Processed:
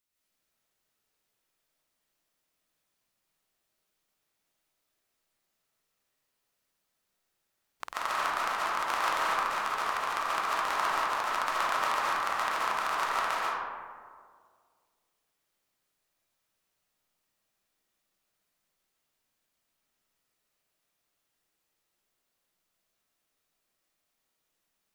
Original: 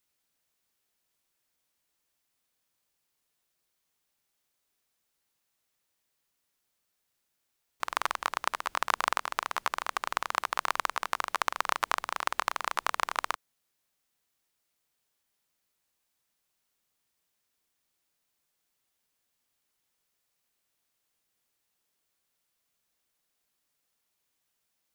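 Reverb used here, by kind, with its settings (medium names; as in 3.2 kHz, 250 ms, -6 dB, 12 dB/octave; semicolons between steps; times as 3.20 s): algorithmic reverb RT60 1.9 s, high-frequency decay 0.4×, pre-delay 100 ms, DRR -8.5 dB; trim -7 dB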